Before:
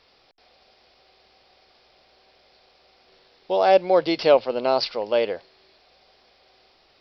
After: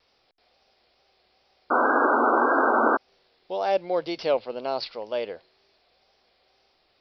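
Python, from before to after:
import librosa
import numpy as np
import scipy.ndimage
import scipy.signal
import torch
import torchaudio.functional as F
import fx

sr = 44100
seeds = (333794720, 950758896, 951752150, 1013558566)

y = fx.spec_paint(x, sr, seeds[0], shape='noise', start_s=1.7, length_s=1.27, low_hz=230.0, high_hz=1600.0, level_db=-13.0)
y = fx.wow_flutter(y, sr, seeds[1], rate_hz=2.1, depth_cents=57.0)
y = y * 10.0 ** (-7.5 / 20.0)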